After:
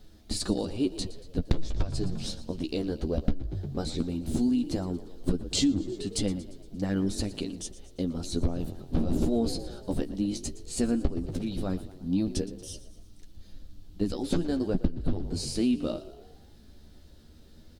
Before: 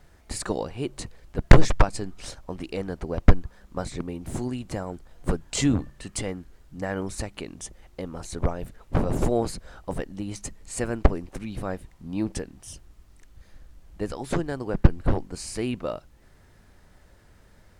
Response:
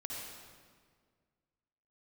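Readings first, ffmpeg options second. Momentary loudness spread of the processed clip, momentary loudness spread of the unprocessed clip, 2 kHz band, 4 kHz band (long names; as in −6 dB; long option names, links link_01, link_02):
9 LU, 15 LU, −12.5 dB, +2.0 dB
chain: -filter_complex "[0:a]flanger=delay=9.3:depth=4.7:regen=21:speed=0.15:shape=triangular,asplit=2[link_01][link_02];[link_02]acontrast=61,volume=-0.5dB[link_03];[link_01][link_03]amix=inputs=2:normalize=0,equalizer=frequency=125:width_type=o:width=1:gain=-7,equalizer=frequency=250:width_type=o:width=1:gain=6,equalizer=frequency=500:width_type=o:width=1:gain=-4,equalizer=frequency=1000:width_type=o:width=1:gain=-10,equalizer=frequency=2000:width_type=o:width=1:gain=-11,equalizer=frequency=4000:width_type=o:width=1:gain=9,equalizer=frequency=8000:width_type=o:width=1:gain=-4,asplit=2[link_04][link_05];[link_05]asplit=5[link_06][link_07][link_08][link_09][link_10];[link_06]adelay=116,afreqshift=43,volume=-17dB[link_11];[link_07]adelay=232,afreqshift=86,volume=-22.2dB[link_12];[link_08]adelay=348,afreqshift=129,volume=-27.4dB[link_13];[link_09]adelay=464,afreqshift=172,volume=-32.6dB[link_14];[link_10]adelay=580,afreqshift=215,volume=-37.8dB[link_15];[link_11][link_12][link_13][link_14][link_15]amix=inputs=5:normalize=0[link_16];[link_04][link_16]amix=inputs=2:normalize=0,acompressor=threshold=-18dB:ratio=20,equalizer=frequency=6300:width_type=o:width=2.8:gain=-3,volume=-2.5dB"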